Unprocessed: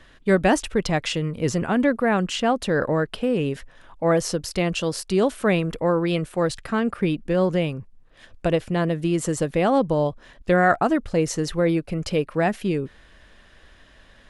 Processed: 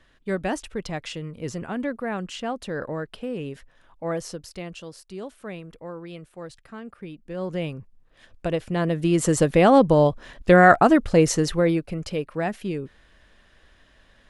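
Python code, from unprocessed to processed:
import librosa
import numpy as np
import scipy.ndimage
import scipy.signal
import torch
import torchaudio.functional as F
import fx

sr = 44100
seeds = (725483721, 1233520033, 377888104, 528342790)

y = fx.gain(x, sr, db=fx.line((4.18, -8.5), (5.0, -16.0), (7.16, -16.0), (7.65, -4.5), (8.52, -4.5), (9.36, 4.5), (11.28, 4.5), (12.11, -5.0)))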